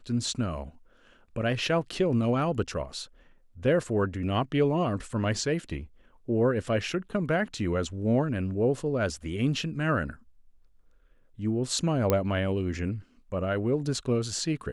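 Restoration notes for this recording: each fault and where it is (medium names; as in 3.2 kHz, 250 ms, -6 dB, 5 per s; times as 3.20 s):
12.10 s: pop -10 dBFS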